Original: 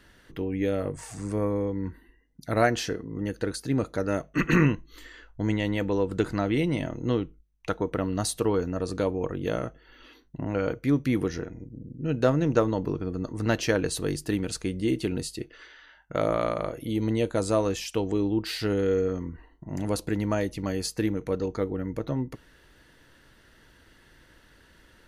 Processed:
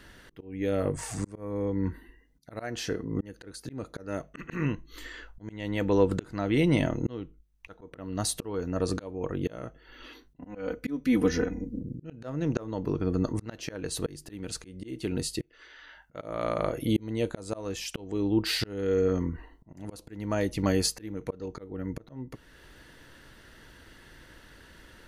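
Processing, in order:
volume swells 575 ms
0:10.36–0:11.81: comb filter 4 ms, depth 97%
level +4.5 dB

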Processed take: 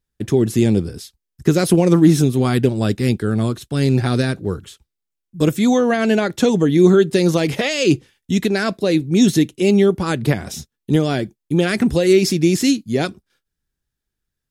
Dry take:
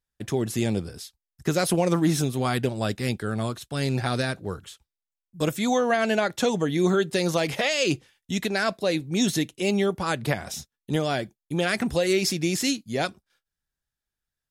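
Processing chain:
low shelf with overshoot 490 Hz +6 dB, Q 1.5
level +3.5 dB

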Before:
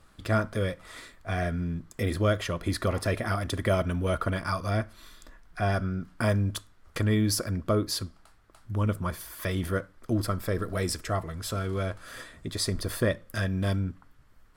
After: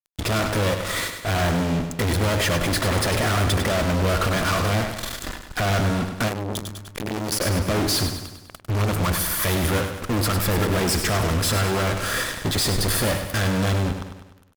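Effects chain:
fuzz pedal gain 50 dB, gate −47 dBFS
repeating echo 100 ms, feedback 53%, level −8 dB
0:06.28–0:07.41: saturating transformer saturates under 550 Hz
level −7.5 dB

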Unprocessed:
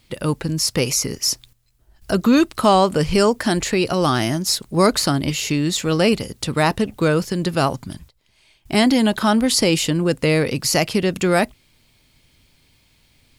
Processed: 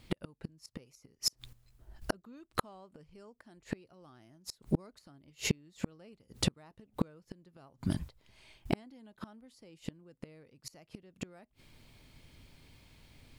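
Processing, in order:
high-shelf EQ 2,200 Hz −8 dB
gate with flip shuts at −16 dBFS, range −39 dB
level +1 dB

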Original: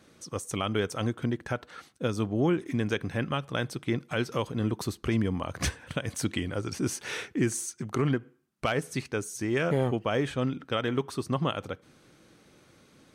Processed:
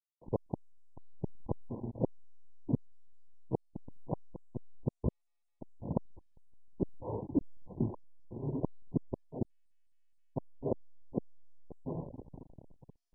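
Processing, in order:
on a send: feedback delay with all-pass diffusion 521 ms, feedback 60%, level −12 dB
on the sum: gate with flip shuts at −21 dBFS, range −40 dB
reverb reduction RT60 1.5 s
slack as between gear wheels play −36.5 dBFS
level +4 dB
MP2 8 kbit/s 22,050 Hz

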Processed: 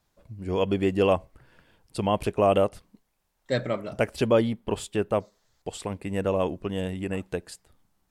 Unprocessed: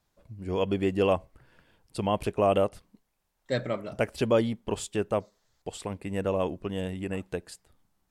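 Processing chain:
0:04.28–0:05.15: parametric band 6,500 Hz −5.5 dB 0.91 octaves
level +2.5 dB

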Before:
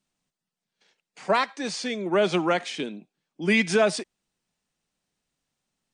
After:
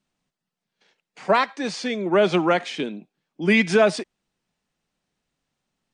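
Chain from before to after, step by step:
low-pass filter 3,800 Hz 6 dB per octave
level +4 dB

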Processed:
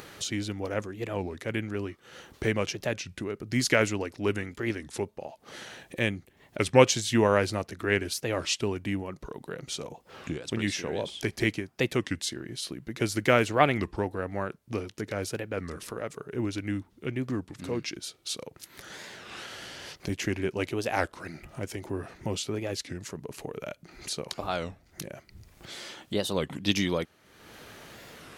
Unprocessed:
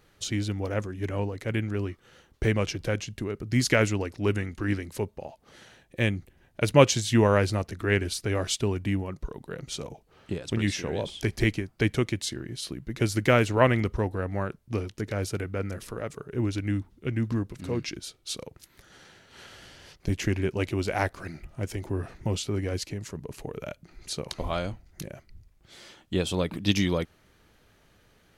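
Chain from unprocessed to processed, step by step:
high-pass filter 210 Hz 6 dB per octave
upward compression, threshold −33 dBFS
wow of a warped record 33 1/3 rpm, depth 250 cents

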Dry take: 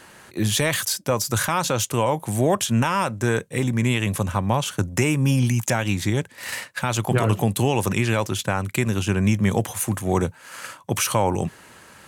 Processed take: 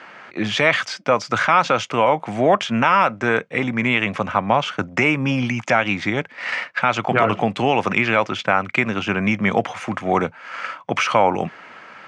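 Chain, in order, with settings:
loudspeaker in its box 220–4,500 Hz, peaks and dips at 370 Hz −4 dB, 700 Hz +5 dB, 1,300 Hz +7 dB, 2,200 Hz +7 dB, 4,000 Hz −7 dB
level +4 dB

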